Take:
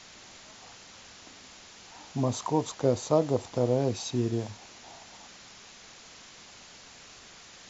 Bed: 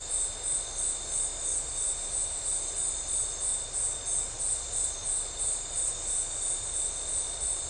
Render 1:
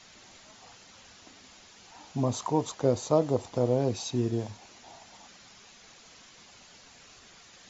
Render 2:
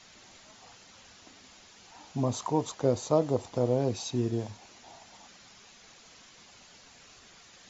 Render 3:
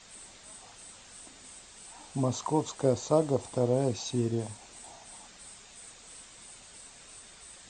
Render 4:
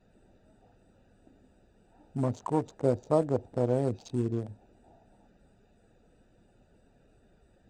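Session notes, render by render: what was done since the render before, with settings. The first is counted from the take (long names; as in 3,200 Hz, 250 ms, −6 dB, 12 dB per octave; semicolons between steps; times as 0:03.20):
broadband denoise 6 dB, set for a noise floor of −51 dBFS
level −1 dB
mix in bed −20.5 dB
adaptive Wiener filter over 41 samples; high-shelf EQ 3,800 Hz −6 dB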